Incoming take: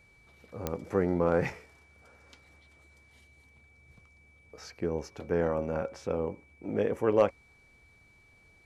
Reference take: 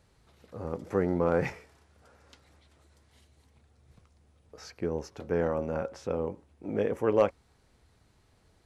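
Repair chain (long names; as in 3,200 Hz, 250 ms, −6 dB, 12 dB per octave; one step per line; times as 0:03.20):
click removal
notch filter 2,300 Hz, Q 30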